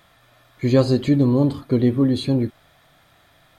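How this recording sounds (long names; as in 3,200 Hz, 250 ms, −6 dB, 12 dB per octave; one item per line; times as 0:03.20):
background noise floor −57 dBFS
spectral slope −8.5 dB per octave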